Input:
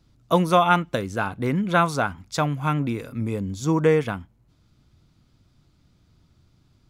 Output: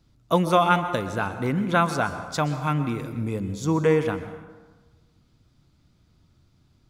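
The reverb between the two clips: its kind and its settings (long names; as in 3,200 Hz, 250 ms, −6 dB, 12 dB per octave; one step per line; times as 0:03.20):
dense smooth reverb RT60 1.3 s, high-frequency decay 0.6×, pre-delay 110 ms, DRR 10 dB
level −1.5 dB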